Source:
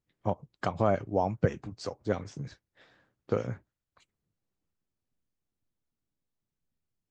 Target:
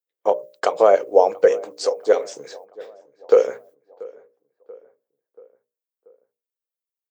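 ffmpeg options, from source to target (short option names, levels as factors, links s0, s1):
-filter_complex "[0:a]agate=range=0.0794:threshold=0.00112:ratio=16:detection=peak,highpass=f=470:t=q:w=4.9,aemphasis=mode=production:type=bsi,bandreject=f=60:t=h:w=6,bandreject=f=120:t=h:w=6,bandreject=f=180:t=h:w=6,bandreject=f=240:t=h:w=6,bandreject=f=300:t=h:w=6,bandreject=f=360:t=h:w=6,bandreject=f=420:t=h:w=6,bandreject=f=480:t=h:w=6,bandreject=f=540:t=h:w=6,bandreject=f=600:t=h:w=6,asplit=2[s0][s1];[s1]adelay=684,lowpass=f=1800:p=1,volume=0.0841,asplit=2[s2][s3];[s3]adelay=684,lowpass=f=1800:p=1,volume=0.54,asplit=2[s4][s5];[s5]adelay=684,lowpass=f=1800:p=1,volume=0.54,asplit=2[s6][s7];[s7]adelay=684,lowpass=f=1800:p=1,volume=0.54[s8];[s0][s2][s4][s6][s8]amix=inputs=5:normalize=0,volume=2.37"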